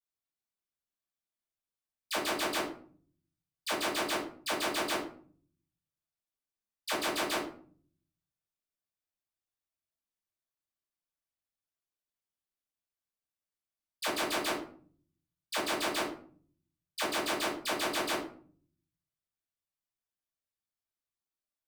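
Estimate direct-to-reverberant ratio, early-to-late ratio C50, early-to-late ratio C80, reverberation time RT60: -9.5 dB, 6.0 dB, 10.5 dB, 0.50 s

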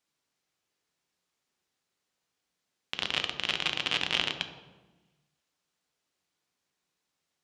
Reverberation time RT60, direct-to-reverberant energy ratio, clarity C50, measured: 1.2 s, 6.0 dB, 8.5 dB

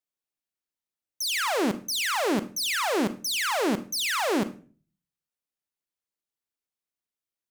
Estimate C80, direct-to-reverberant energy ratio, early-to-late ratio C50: 19.5 dB, 11.5 dB, 14.5 dB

